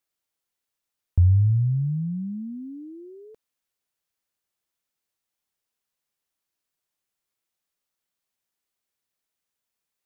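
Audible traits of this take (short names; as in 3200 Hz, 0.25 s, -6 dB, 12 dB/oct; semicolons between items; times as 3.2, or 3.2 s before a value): noise floor -85 dBFS; spectral tilt -17.0 dB/oct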